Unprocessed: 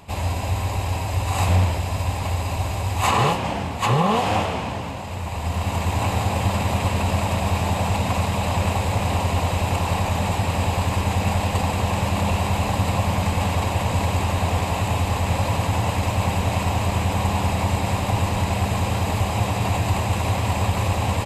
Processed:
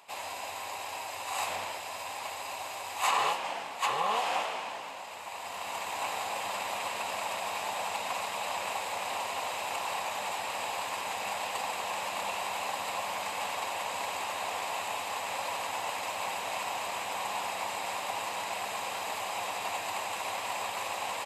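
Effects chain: high-pass 720 Hz 12 dB/octave; trim -6 dB

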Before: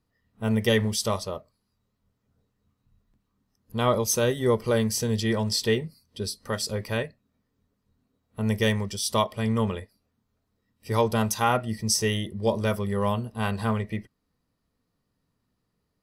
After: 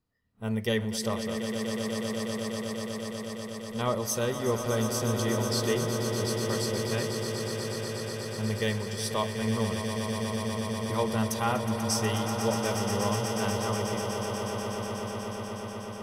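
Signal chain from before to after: echo with a slow build-up 122 ms, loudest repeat 8, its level -10 dB; trim -6 dB

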